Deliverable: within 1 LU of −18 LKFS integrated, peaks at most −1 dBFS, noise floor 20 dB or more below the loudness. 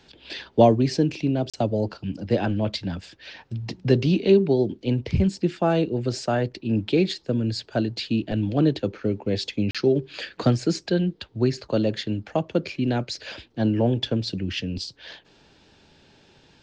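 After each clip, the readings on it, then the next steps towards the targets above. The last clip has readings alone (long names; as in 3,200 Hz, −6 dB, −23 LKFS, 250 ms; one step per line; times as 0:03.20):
number of dropouts 2; longest dropout 36 ms; integrated loudness −24.0 LKFS; sample peak −4.0 dBFS; target loudness −18.0 LKFS
→ repair the gap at 0:01.50/0:09.71, 36 ms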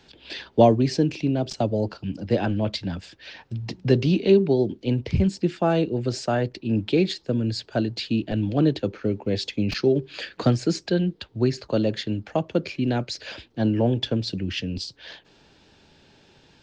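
number of dropouts 0; integrated loudness −24.0 LKFS; sample peak −4.0 dBFS; target loudness −18.0 LKFS
→ level +6 dB
brickwall limiter −1 dBFS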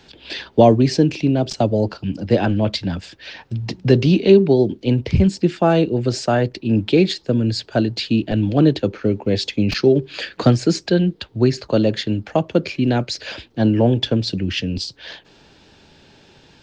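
integrated loudness −18.5 LKFS; sample peak −1.0 dBFS; background noise floor −51 dBFS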